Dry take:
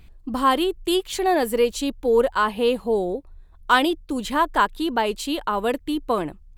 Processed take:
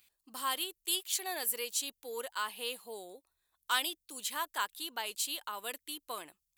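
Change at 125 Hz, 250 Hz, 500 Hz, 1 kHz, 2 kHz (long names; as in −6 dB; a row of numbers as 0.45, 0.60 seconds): can't be measured, −27.5 dB, −23.5 dB, −17.0 dB, −12.5 dB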